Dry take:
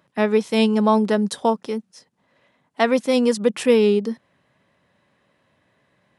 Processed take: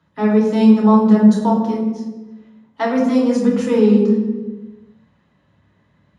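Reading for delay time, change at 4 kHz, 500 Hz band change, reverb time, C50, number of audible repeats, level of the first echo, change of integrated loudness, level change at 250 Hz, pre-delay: no echo, -6.5 dB, +0.5 dB, 1.2 s, 3.5 dB, no echo, no echo, +4.5 dB, +8.5 dB, 3 ms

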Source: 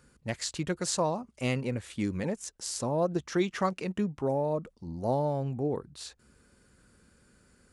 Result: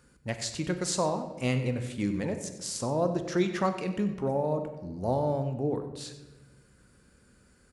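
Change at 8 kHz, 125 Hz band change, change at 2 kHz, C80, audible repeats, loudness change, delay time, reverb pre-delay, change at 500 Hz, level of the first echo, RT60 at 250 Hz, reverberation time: +0.5 dB, +2.0 dB, +0.5 dB, 10.5 dB, 1, +1.0 dB, 94 ms, 16 ms, +1.0 dB, -15.5 dB, 1.5 s, 1.1 s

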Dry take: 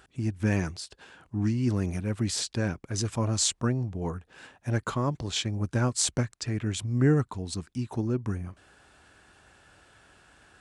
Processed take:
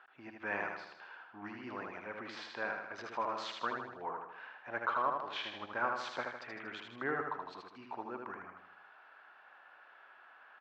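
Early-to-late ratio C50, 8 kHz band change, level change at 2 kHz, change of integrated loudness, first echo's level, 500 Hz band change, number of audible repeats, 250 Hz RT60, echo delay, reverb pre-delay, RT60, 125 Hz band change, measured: no reverb, under -30 dB, +0.5 dB, -11.0 dB, -4.0 dB, -8.5 dB, 6, no reverb, 78 ms, no reverb, no reverb, -31.5 dB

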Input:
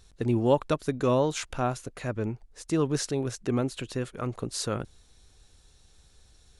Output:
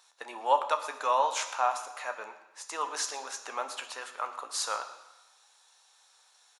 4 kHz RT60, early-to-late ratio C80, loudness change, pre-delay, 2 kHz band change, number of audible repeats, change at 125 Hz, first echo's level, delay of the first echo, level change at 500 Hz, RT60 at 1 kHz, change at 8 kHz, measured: 1.1 s, 12.0 dB, -2.5 dB, 3 ms, +2.5 dB, 1, under -40 dB, -17.5 dB, 118 ms, -7.5 dB, 1.1 s, +1.5 dB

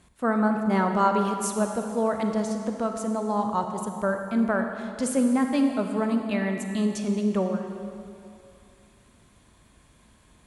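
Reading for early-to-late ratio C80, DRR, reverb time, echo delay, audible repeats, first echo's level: 6.0 dB, 4.5 dB, 2.6 s, no echo, no echo, no echo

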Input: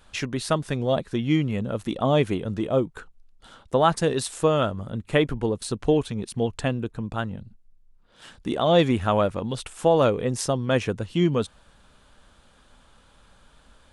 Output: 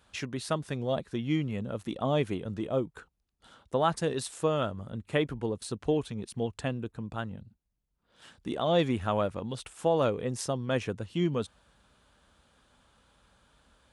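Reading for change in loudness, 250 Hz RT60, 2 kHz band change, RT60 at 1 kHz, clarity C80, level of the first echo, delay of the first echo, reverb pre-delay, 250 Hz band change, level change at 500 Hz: -7.0 dB, no reverb, -7.0 dB, no reverb, no reverb, no echo, no echo, no reverb, -7.0 dB, -7.0 dB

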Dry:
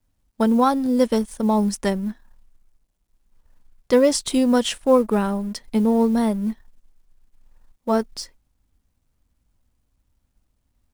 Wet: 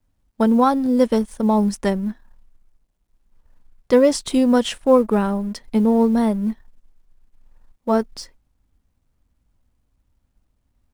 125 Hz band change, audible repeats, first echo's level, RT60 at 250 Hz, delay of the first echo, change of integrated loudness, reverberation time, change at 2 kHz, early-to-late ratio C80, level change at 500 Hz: no reading, no echo, no echo, no reverb, no echo, +2.0 dB, no reverb, +0.5 dB, no reverb, +2.0 dB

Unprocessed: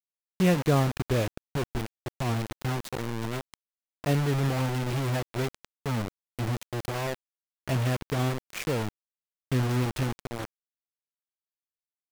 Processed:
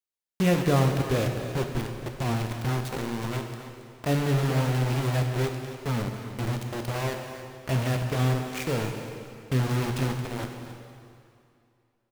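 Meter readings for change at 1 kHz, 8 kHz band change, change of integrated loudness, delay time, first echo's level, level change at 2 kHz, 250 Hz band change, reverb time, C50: +1.5 dB, +1.5 dB, +1.5 dB, 274 ms, -13.5 dB, +1.5 dB, +1.5 dB, 2.4 s, 4.5 dB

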